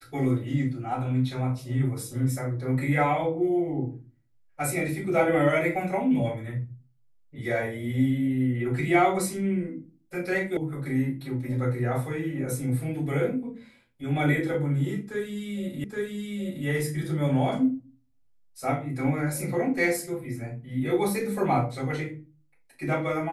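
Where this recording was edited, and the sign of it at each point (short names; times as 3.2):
10.57 sound cut off
15.84 repeat of the last 0.82 s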